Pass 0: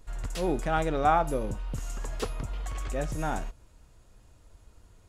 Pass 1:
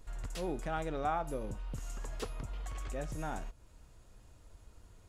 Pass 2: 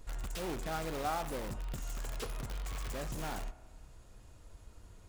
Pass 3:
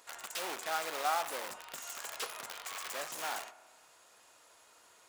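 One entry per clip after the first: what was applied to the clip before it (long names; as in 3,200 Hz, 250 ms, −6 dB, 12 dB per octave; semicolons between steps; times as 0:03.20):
downward compressor 1.5 to 1, threshold −45 dBFS, peak gain reduction 9.5 dB; level −1.5 dB
spring reverb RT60 1.2 s, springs 31 ms, chirp 75 ms, DRR 15.5 dB; in parallel at −3.5 dB: wrap-around overflow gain 35.5 dB; on the sum: level −2 dB
high-pass filter 780 Hz 12 dB per octave; level +6 dB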